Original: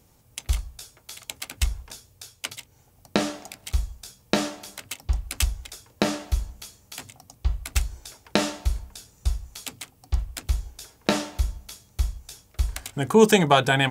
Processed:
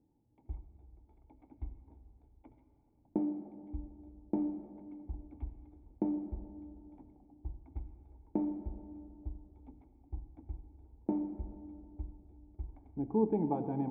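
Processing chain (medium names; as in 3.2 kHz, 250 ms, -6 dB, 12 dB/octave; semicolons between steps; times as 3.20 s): cascade formant filter u; reverberation RT60 3.0 s, pre-delay 30 ms, DRR 10 dB; trim -2.5 dB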